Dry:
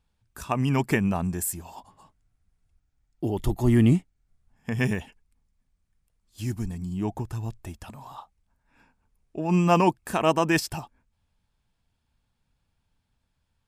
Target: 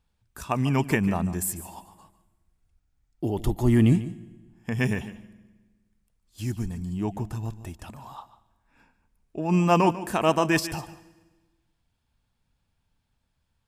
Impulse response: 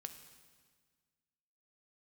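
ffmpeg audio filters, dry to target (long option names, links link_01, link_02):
-filter_complex "[0:a]asplit=2[link_01][link_02];[1:a]atrim=start_sample=2205,asetrate=57330,aresample=44100,adelay=146[link_03];[link_02][link_03]afir=irnorm=-1:irlink=0,volume=-7.5dB[link_04];[link_01][link_04]amix=inputs=2:normalize=0"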